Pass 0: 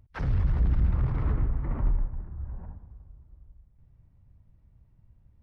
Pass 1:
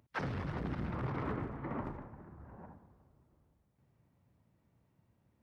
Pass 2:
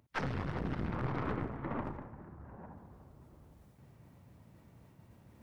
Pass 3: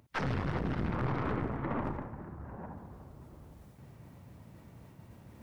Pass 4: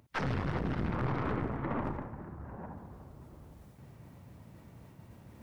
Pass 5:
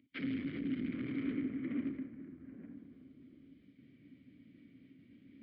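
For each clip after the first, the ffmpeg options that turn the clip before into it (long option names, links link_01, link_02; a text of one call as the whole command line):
ffmpeg -i in.wav -af "highpass=230,volume=1.5dB" out.wav
ffmpeg -i in.wav -af "aeval=exprs='0.0562*(cos(1*acos(clip(val(0)/0.0562,-1,1)))-cos(1*PI/2))+0.00891*(cos(4*acos(clip(val(0)/0.0562,-1,1)))-cos(4*PI/2))':channel_layout=same,areverse,acompressor=mode=upward:threshold=-47dB:ratio=2.5,areverse,volume=1dB" out.wav
ffmpeg -i in.wav -af "alimiter=level_in=4.5dB:limit=-24dB:level=0:latency=1:release=59,volume=-4.5dB,volume=6dB" out.wav
ffmpeg -i in.wav -af anull out.wav
ffmpeg -i in.wav -filter_complex "[0:a]asplit=3[link_01][link_02][link_03];[link_01]bandpass=frequency=270:width_type=q:width=8,volume=0dB[link_04];[link_02]bandpass=frequency=2290:width_type=q:width=8,volume=-6dB[link_05];[link_03]bandpass=frequency=3010:width_type=q:width=8,volume=-9dB[link_06];[link_04][link_05][link_06]amix=inputs=3:normalize=0,aresample=11025,aresample=44100,volume=7dB" out.wav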